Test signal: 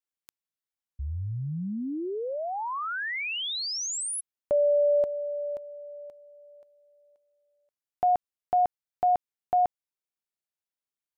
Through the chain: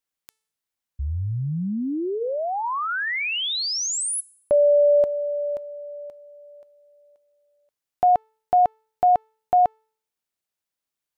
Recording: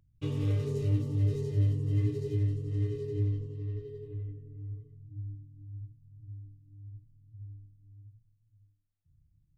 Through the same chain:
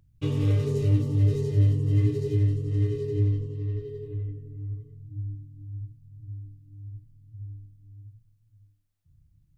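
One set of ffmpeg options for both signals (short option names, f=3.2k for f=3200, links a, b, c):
-af "bandreject=f=439.1:t=h:w=4,bandreject=f=878.2:t=h:w=4,bandreject=f=1.3173k:t=h:w=4,bandreject=f=1.7564k:t=h:w=4,bandreject=f=2.1955k:t=h:w=4,bandreject=f=2.6346k:t=h:w=4,bandreject=f=3.0737k:t=h:w=4,bandreject=f=3.5128k:t=h:w=4,bandreject=f=3.9519k:t=h:w=4,bandreject=f=4.391k:t=h:w=4,bandreject=f=4.8301k:t=h:w=4,bandreject=f=5.2692k:t=h:w=4,bandreject=f=5.7083k:t=h:w=4,bandreject=f=6.1474k:t=h:w=4,bandreject=f=6.5865k:t=h:w=4,bandreject=f=7.0256k:t=h:w=4,bandreject=f=7.4647k:t=h:w=4,bandreject=f=7.9038k:t=h:w=4,bandreject=f=8.3429k:t=h:w=4,bandreject=f=8.782k:t=h:w=4,bandreject=f=9.2211k:t=h:w=4,bandreject=f=9.6602k:t=h:w=4,bandreject=f=10.0993k:t=h:w=4,bandreject=f=10.5384k:t=h:w=4,bandreject=f=10.9775k:t=h:w=4,bandreject=f=11.4166k:t=h:w=4,volume=6dB"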